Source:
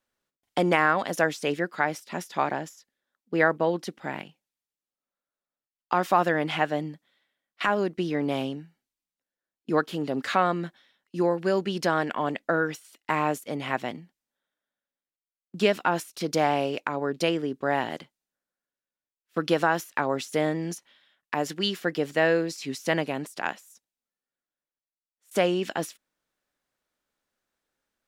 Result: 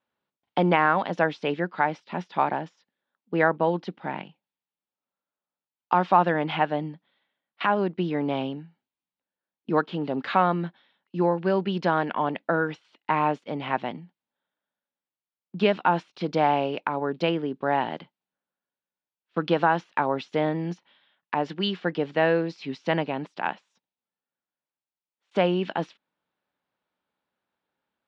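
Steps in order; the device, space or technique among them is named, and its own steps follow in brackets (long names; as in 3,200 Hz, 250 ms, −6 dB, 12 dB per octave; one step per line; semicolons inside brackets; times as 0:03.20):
guitar cabinet (loudspeaker in its box 84–3,800 Hz, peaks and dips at 180 Hz +5 dB, 890 Hz +6 dB, 1,900 Hz −3 dB)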